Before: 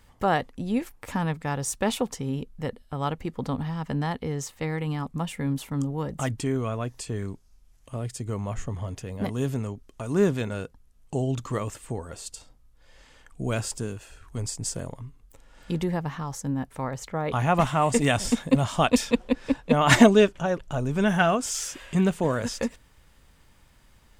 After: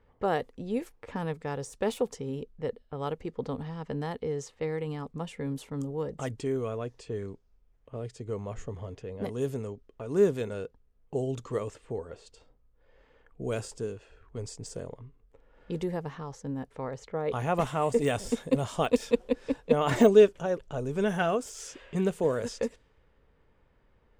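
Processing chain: high shelf 6500 Hz +4.5 dB; low-pass opened by the level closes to 1900 Hz, open at -22 dBFS; de-esser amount 60%; bell 450 Hz +11 dB 0.61 oct; gain -8 dB

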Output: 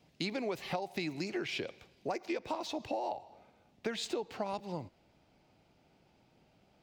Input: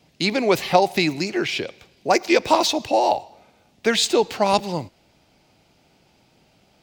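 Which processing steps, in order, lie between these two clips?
high shelf 3100 Hz -4.5 dB, from 2.13 s -9.5 dB; compressor 12:1, threshold -25 dBFS, peak gain reduction 15.5 dB; gain -7.5 dB

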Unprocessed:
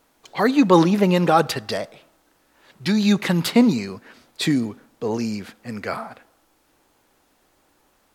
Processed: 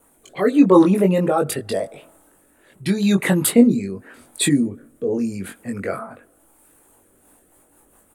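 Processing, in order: formant sharpening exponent 1.5; resonant high shelf 6900 Hz +11.5 dB, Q 3; rotary speaker horn 0.85 Hz, later 5.5 Hz, at 6.83; doubler 21 ms -3.5 dB; in parallel at -3 dB: compressor, threshold -26 dBFS, peak gain reduction 17 dB

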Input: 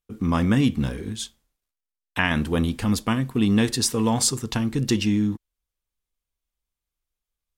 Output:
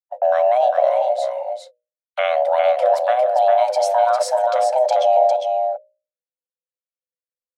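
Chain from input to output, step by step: gate -35 dBFS, range -44 dB; RIAA curve playback; notches 60/120 Hz; limiter -9.5 dBFS, peak gain reduction 8 dB; frequency shift +490 Hz; echo 0.403 s -5 dB

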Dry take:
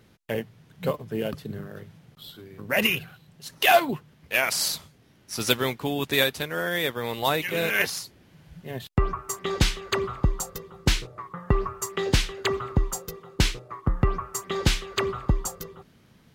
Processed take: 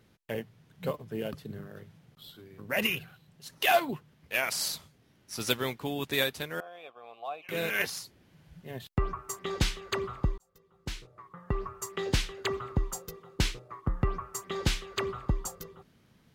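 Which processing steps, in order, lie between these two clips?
6.6–7.49 vowel filter a; 10.38–12.01 fade in; gain -6 dB

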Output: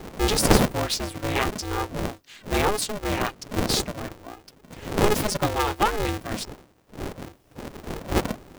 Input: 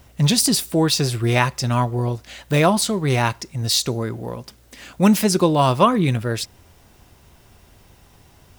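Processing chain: wind noise 260 Hz -22 dBFS; reverb removal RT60 1.8 s; polarity switched at an audio rate 210 Hz; gain -6 dB

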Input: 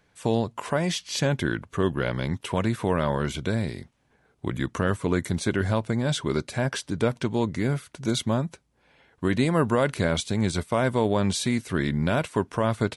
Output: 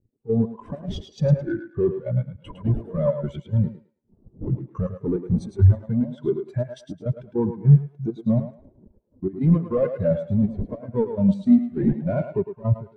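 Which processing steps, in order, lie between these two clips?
wind noise 360 Hz -37 dBFS; reverb removal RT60 0.59 s; sample leveller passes 3; in parallel at -9 dB: wrapped overs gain 14 dB; on the sum: chopper 3.4 Hz, depth 65%, duty 55%; on a send: thinning echo 0.107 s, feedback 55%, high-pass 220 Hz, level -3 dB; on the sum: spectral expander 2.5:1

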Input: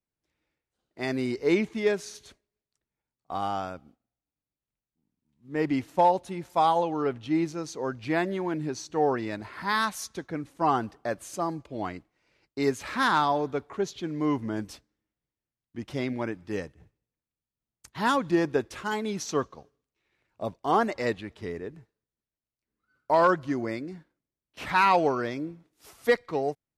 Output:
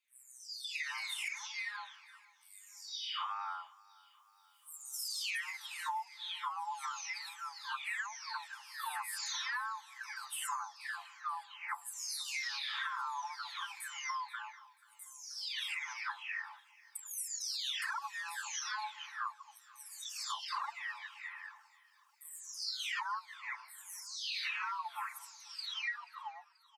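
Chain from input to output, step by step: spectral delay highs early, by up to 0.886 s; recorder AGC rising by 8.4 dB/s; steep high-pass 870 Hz 96 dB/oct; compressor 6:1, threshold -38 dBFS, peak gain reduction 16 dB; feedback echo 0.483 s, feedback 58%, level -23 dB; gain +1 dB

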